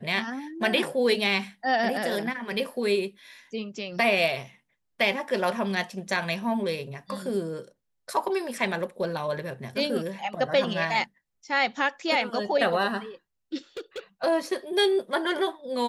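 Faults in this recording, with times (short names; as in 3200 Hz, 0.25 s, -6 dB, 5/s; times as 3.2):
13.77–13.99 clipped -31 dBFS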